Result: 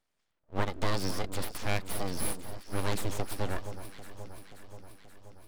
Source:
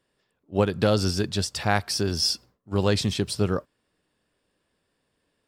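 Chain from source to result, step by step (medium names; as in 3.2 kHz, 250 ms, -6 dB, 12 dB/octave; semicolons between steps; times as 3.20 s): full-wave rectifier; echo whose repeats swap between lows and highs 265 ms, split 1.3 kHz, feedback 79%, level -10.5 dB; trim -6 dB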